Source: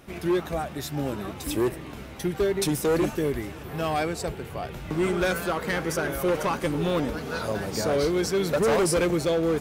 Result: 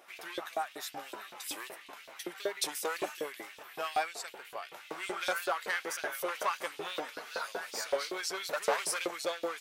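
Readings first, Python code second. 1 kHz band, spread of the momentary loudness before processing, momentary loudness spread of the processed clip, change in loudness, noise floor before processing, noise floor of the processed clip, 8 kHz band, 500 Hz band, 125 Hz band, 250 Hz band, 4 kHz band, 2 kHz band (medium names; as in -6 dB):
-5.0 dB, 9 LU, 11 LU, -9.5 dB, -40 dBFS, -53 dBFS, -5.0 dB, -12.5 dB, -33.5 dB, -21.0 dB, -4.0 dB, -4.5 dB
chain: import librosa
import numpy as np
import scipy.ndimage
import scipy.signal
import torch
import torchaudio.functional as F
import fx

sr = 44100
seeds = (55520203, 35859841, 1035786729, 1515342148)

y = fx.wow_flutter(x, sr, seeds[0], rate_hz=2.1, depth_cents=38.0)
y = fx.filter_lfo_highpass(y, sr, shape='saw_up', hz=5.3, low_hz=500.0, high_hz=4100.0, q=1.6)
y = y * librosa.db_to_amplitude(-5.5)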